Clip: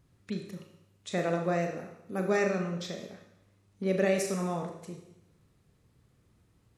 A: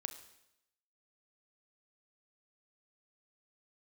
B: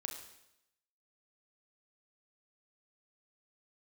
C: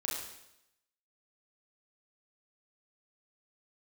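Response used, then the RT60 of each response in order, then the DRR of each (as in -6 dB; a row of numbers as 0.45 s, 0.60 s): B; 0.85 s, 0.85 s, 0.85 s; 8.0 dB, 2.5 dB, -4.5 dB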